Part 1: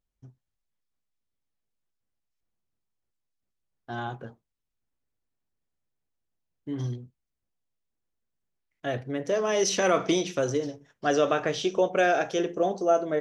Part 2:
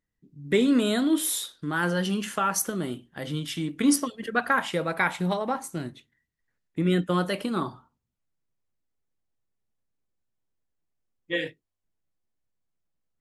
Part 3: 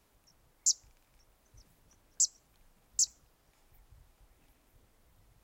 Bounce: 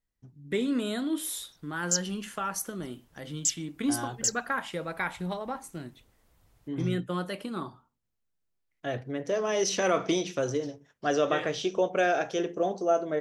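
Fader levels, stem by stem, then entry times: -2.5 dB, -7.0 dB, +0.5 dB; 0.00 s, 0.00 s, 1.25 s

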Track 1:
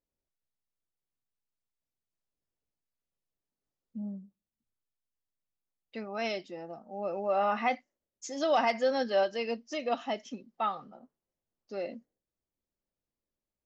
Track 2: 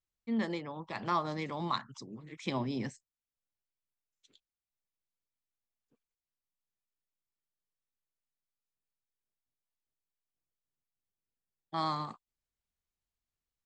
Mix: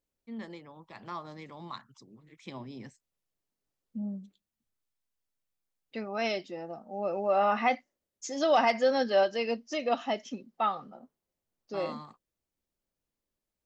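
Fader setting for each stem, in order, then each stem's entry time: +2.5 dB, -8.5 dB; 0.00 s, 0.00 s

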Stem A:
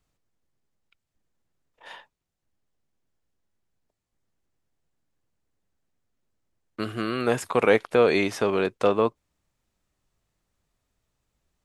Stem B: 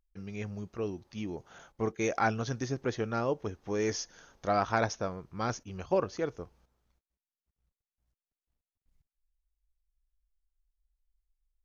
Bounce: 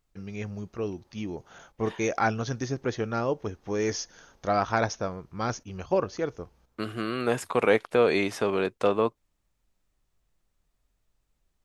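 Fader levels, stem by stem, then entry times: -2.5 dB, +3.0 dB; 0.00 s, 0.00 s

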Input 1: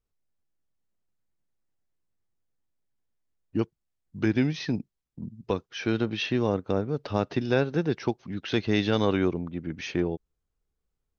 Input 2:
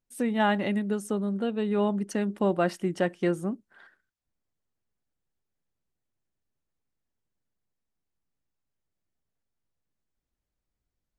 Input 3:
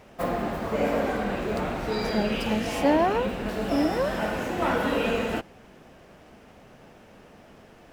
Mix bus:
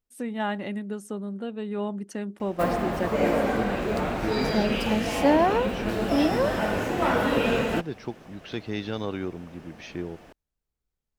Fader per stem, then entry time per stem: -7.0 dB, -4.5 dB, +1.5 dB; 0.00 s, 0.00 s, 2.40 s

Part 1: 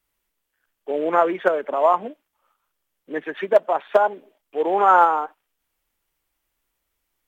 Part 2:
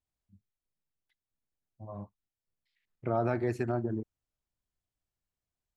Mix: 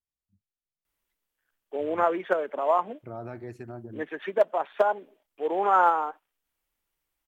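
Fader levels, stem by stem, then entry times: -6.0 dB, -9.0 dB; 0.85 s, 0.00 s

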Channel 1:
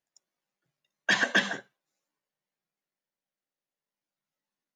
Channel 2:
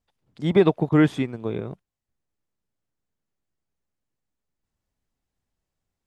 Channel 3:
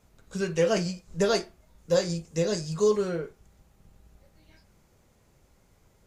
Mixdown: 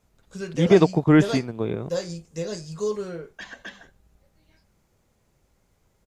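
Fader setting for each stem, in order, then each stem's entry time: -15.5 dB, +1.5 dB, -4.0 dB; 2.30 s, 0.15 s, 0.00 s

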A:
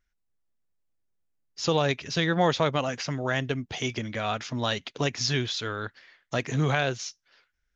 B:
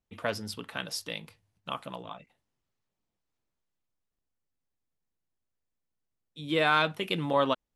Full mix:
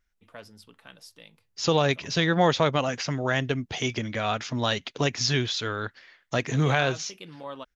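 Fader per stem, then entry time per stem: +2.0 dB, -13.0 dB; 0.00 s, 0.10 s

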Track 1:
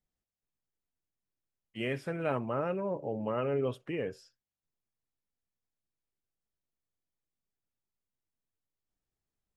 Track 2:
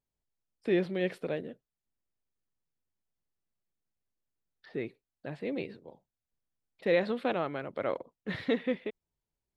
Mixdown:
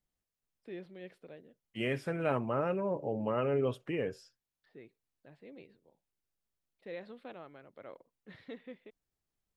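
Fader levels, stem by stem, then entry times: +0.5 dB, -17.0 dB; 0.00 s, 0.00 s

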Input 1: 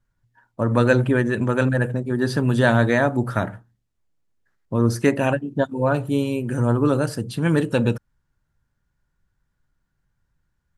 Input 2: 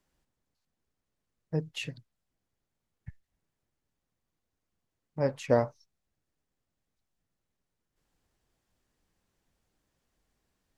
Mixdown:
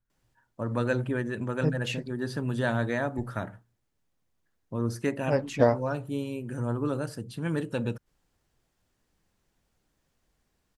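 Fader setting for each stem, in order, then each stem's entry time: -10.5 dB, +3.0 dB; 0.00 s, 0.10 s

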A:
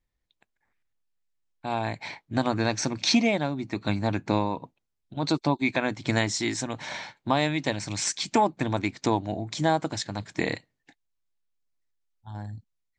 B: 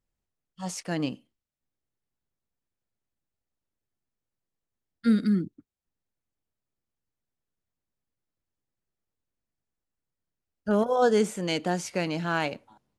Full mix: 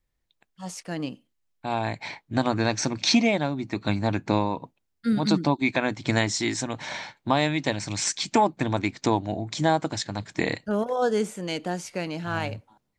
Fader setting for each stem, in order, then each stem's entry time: +1.5 dB, -2.0 dB; 0.00 s, 0.00 s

